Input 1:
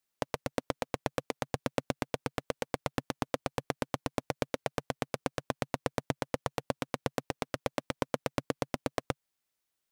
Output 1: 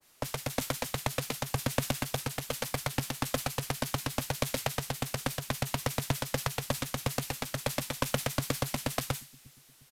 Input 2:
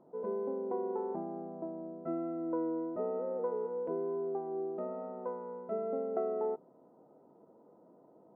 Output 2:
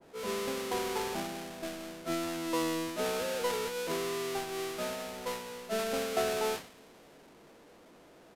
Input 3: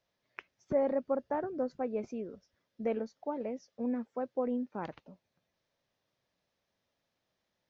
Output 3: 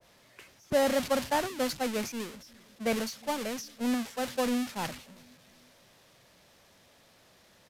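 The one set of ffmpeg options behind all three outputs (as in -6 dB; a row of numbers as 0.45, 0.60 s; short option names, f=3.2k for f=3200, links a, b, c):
-filter_complex "[0:a]aeval=exprs='val(0)+0.5*0.0178*sgn(val(0))':c=same,agate=range=-33dB:threshold=-28dB:ratio=3:detection=peak,acrossover=split=280|570[a][b][c];[a]aecho=1:1:355|710|1065:0.0944|0.0397|0.0167[d];[b]acompressor=threshold=-57dB:ratio=6[e];[d][e][c]amix=inputs=3:normalize=0,aresample=32000,aresample=44100,adynamicequalizer=threshold=0.00126:dfrequency=1800:dqfactor=0.7:tfrequency=1800:tqfactor=0.7:attack=5:release=100:ratio=0.375:range=3.5:mode=boostabove:tftype=highshelf,volume=7dB"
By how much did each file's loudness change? +3.0, +2.5, +4.5 LU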